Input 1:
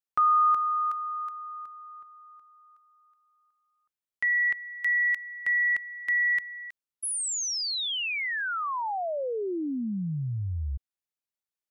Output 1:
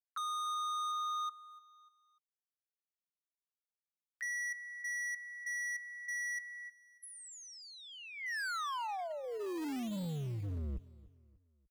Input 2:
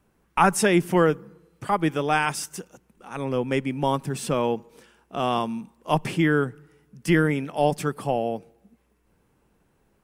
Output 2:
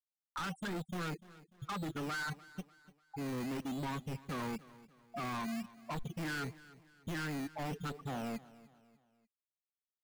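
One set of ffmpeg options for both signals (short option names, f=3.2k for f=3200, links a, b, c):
-filter_complex "[0:a]bandreject=f=109.8:t=h:w=4,bandreject=f=219.6:t=h:w=4,bandreject=f=329.4:t=h:w=4,bandreject=f=439.2:t=h:w=4,bandreject=f=549:t=h:w=4,bandreject=f=658.8:t=h:w=4,bandreject=f=768.6:t=h:w=4,bandreject=f=878.4:t=h:w=4,bandreject=f=988.2:t=h:w=4,bandreject=f=1.098k:t=h:w=4,afftfilt=real='re*gte(hypot(re,im),0.141)':imag='im*gte(hypot(re,im),0.141)':win_size=1024:overlap=0.75,firequalizer=gain_entry='entry(110,0);entry(160,7);entry(330,2);entry(530,-8);entry(1000,1);entry(1500,11);entry(2400,-18);entry(3700,-27);entry(7000,-23)':delay=0.05:min_phase=1,acrossover=split=310|650|5500[a][b][c][d];[a]acrusher=samples=16:mix=1:aa=0.000001:lfo=1:lforange=9.6:lforate=0.97[e];[e][b][c][d]amix=inputs=4:normalize=0,alimiter=limit=-11dB:level=0:latency=1:release=415,asubboost=boost=8.5:cutoff=51,acompressor=threshold=-24dB:ratio=8:attack=7.8:release=28:knee=6:detection=rms,asoftclip=type=hard:threshold=-34dB,acompressor=mode=upward:threshold=-42dB:ratio=2.5:attack=34:release=608:knee=2.83:detection=peak,aecho=1:1:296|592|888:0.106|0.0434|0.0178,volume=-3dB"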